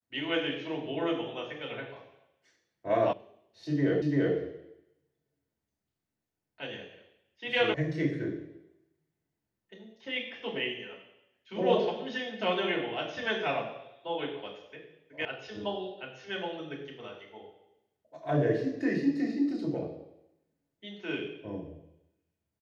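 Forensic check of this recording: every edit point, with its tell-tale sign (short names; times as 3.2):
3.13 sound cut off
4.02 repeat of the last 0.34 s
7.74 sound cut off
15.25 sound cut off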